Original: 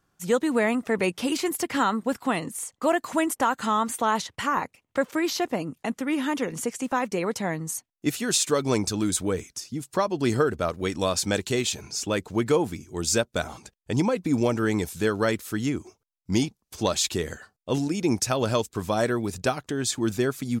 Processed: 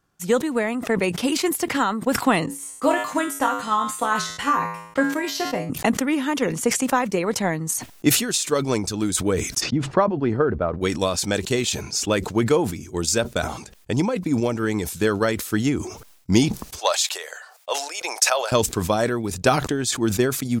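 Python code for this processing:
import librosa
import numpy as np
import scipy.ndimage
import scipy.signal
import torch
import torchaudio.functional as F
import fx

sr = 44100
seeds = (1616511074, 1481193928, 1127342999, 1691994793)

y = fx.comb_fb(x, sr, f0_hz=56.0, decay_s=0.44, harmonics='odd', damping=0.0, mix_pct=90, at=(2.46, 5.7))
y = fx.lowpass(y, sr, hz=fx.line((9.6, 2400.0), (10.8, 1200.0)), slope=12, at=(9.6, 10.8), fade=0.02)
y = fx.steep_highpass(y, sr, hz=560.0, slope=36, at=(16.79, 18.52))
y = fx.rider(y, sr, range_db=10, speed_s=0.5)
y = fx.transient(y, sr, attack_db=5, sustain_db=-2)
y = fx.sustainer(y, sr, db_per_s=75.0)
y = y * librosa.db_to_amplitude(1.5)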